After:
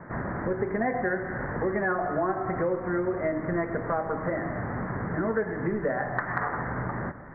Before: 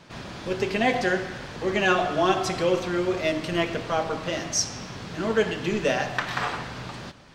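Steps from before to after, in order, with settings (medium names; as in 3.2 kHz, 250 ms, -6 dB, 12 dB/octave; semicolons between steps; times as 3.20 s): steep low-pass 2 kHz 96 dB/octave; compression 4:1, threshold -34 dBFS, peak gain reduction 15 dB; trim +7.5 dB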